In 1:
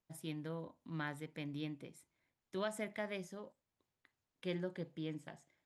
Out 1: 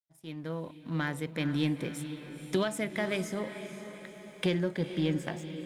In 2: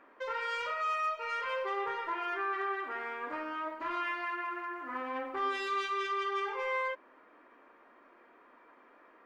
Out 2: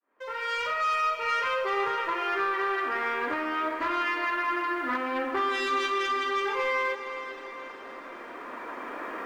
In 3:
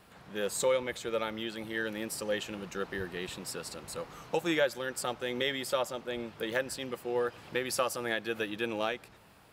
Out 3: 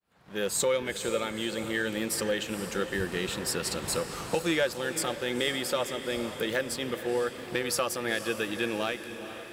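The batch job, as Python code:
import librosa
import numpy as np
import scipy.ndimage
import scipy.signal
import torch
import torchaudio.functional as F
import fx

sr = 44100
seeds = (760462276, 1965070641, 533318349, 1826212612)

p1 = fx.fade_in_head(x, sr, length_s=0.5)
p2 = fx.recorder_agc(p1, sr, target_db=-20.5, rise_db_per_s=6.9, max_gain_db=30)
p3 = fx.dynamic_eq(p2, sr, hz=800.0, q=0.78, threshold_db=-39.0, ratio=4.0, max_db=-4)
p4 = fx.leveller(p3, sr, passes=1)
y = p4 + fx.echo_diffused(p4, sr, ms=482, feedback_pct=53, wet_db=-10.5, dry=0)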